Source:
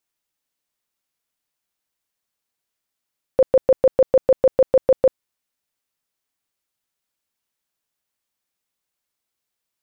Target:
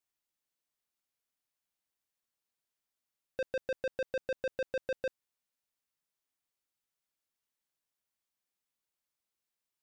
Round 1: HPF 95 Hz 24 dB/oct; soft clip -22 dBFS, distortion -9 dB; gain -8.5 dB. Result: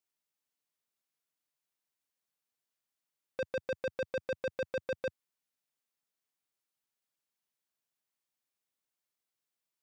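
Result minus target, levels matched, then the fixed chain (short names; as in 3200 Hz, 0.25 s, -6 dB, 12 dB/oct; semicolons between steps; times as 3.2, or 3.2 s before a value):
125 Hz band +6.5 dB
soft clip -22 dBFS, distortion -10 dB; gain -8.5 dB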